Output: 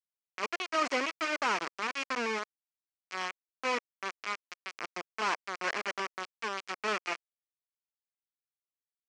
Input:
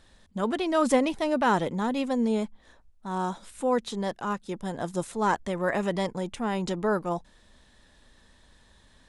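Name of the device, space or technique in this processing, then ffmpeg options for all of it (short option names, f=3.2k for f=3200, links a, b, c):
hand-held game console: -af "acrusher=bits=3:mix=0:aa=0.000001,highpass=430,equalizer=f=550:t=q:w=4:g=-5,equalizer=f=850:t=q:w=4:g=-6,equalizer=f=1.2k:t=q:w=4:g=4,equalizer=f=2.3k:t=q:w=4:g=6,equalizer=f=3.7k:t=q:w=4:g=-8,lowpass=f=5.9k:w=0.5412,lowpass=f=5.9k:w=1.3066,volume=-5.5dB"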